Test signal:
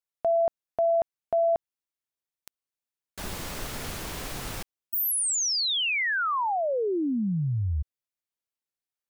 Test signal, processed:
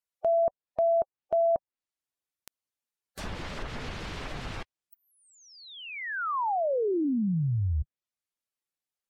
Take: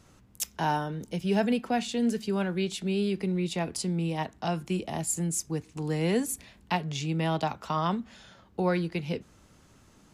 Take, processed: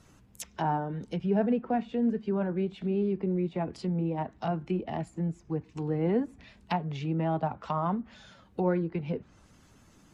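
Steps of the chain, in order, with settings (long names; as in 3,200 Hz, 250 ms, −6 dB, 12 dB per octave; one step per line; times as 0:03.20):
spectral magnitudes quantised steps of 15 dB
treble cut that deepens with the level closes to 1,200 Hz, closed at −27 dBFS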